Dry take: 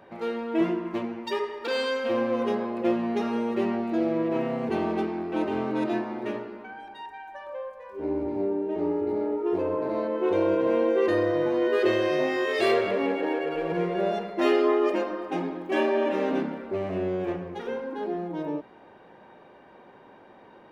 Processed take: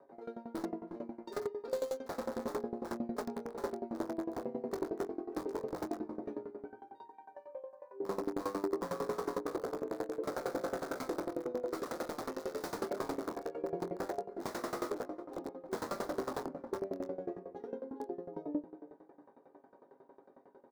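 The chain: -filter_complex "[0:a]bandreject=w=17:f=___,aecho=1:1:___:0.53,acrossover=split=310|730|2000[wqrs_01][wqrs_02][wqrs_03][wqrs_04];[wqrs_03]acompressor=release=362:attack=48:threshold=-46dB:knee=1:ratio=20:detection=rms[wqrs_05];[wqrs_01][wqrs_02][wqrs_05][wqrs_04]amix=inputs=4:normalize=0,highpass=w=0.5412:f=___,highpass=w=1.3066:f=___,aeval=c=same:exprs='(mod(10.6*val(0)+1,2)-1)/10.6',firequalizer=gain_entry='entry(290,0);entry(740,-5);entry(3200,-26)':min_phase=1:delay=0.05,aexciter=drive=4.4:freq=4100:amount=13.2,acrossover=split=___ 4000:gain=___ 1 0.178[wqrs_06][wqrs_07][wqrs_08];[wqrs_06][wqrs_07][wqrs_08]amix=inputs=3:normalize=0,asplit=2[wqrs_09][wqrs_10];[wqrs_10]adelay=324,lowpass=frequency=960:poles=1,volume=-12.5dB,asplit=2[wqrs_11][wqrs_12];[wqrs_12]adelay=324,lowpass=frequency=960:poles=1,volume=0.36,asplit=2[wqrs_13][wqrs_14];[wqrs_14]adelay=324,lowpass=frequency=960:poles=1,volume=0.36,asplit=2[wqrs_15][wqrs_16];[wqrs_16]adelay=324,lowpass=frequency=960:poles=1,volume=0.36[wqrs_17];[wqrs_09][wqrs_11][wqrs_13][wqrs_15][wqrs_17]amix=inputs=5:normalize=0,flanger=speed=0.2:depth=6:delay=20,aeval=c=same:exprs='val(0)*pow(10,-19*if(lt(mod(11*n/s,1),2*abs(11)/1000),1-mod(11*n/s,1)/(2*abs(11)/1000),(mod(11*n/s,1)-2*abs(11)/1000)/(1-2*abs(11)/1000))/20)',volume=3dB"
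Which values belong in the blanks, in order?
3500, 7.3, 82, 82, 250, 0.158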